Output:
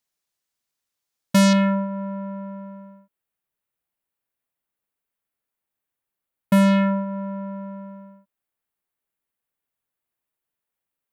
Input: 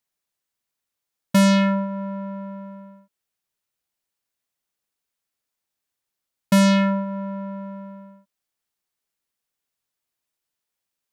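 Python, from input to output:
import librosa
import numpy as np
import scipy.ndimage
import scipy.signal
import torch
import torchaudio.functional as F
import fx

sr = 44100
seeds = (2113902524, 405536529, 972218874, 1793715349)

y = fx.peak_eq(x, sr, hz=5500.0, db=fx.steps((0.0, 2.5), (1.53, -12.5)), octaves=1.3)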